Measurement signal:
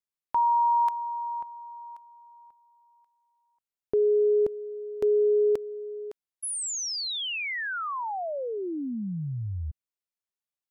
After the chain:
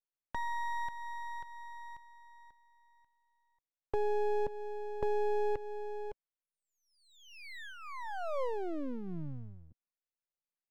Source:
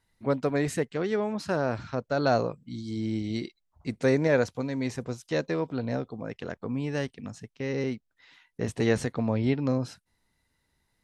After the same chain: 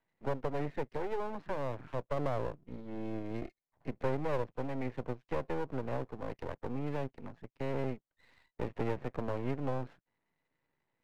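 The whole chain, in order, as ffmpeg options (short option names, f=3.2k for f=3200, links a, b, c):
-filter_complex "[0:a]acrossover=split=240|650[a][b][c];[a]acompressor=threshold=-33dB:ratio=4[d];[b]acompressor=threshold=-32dB:ratio=4[e];[c]acompressor=threshold=-40dB:ratio=4[f];[d][e][f]amix=inputs=3:normalize=0,highpass=f=130:w=0.5412,highpass=f=130:w=1.3066,equalizer=f=210:t=q:w=4:g=-5,equalizer=f=530:t=q:w=4:g=4,equalizer=f=1.4k:t=q:w=4:g=-7,lowpass=f=2.1k:w=0.5412,lowpass=f=2.1k:w=1.3066,aeval=exprs='max(val(0),0)':c=same"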